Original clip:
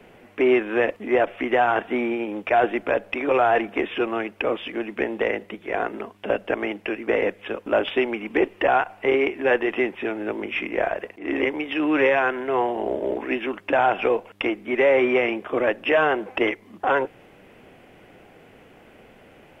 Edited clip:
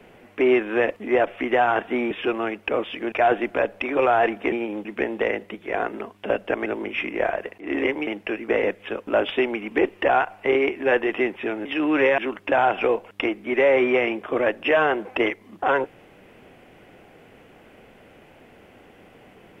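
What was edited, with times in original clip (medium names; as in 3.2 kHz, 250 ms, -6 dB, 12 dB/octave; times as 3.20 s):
2.11–2.44 s: swap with 3.84–4.85 s
10.24–11.65 s: move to 6.66 s
12.18–13.39 s: delete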